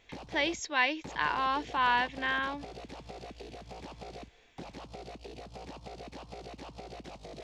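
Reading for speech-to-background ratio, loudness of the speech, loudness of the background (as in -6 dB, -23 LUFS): 16.0 dB, -30.5 LUFS, -46.5 LUFS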